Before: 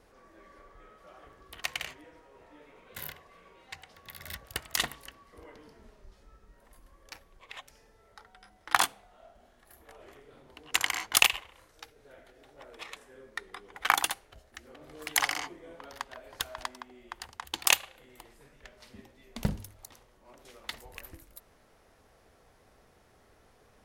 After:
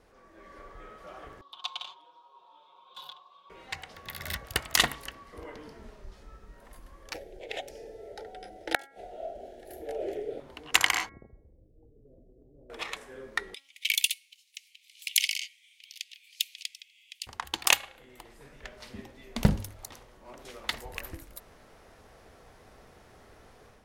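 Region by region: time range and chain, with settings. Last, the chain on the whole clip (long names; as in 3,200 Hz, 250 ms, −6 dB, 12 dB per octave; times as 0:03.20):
0:01.41–0:03.50: pair of resonant band-passes 1,900 Hz, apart 1.8 octaves + comb filter 5.5 ms, depth 79%
0:07.14–0:10.40: flat-topped bell 640 Hz +14.5 dB 2.3 octaves + gate with flip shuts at −12 dBFS, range −34 dB + Butterworth band-reject 1,100 Hz, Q 0.86
0:11.09–0:12.70: Gaussian smoothing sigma 23 samples + downward compressor 2 to 1, threshold −59 dBFS
0:13.54–0:17.27: Butterworth high-pass 2,300 Hz 72 dB per octave + dynamic equaliser 6,100 Hz, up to −3 dB, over −44 dBFS, Q 1.2
whole clip: high-shelf EQ 7,900 Hz −4.5 dB; hum removal 274.6 Hz, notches 8; automatic gain control gain up to 7.5 dB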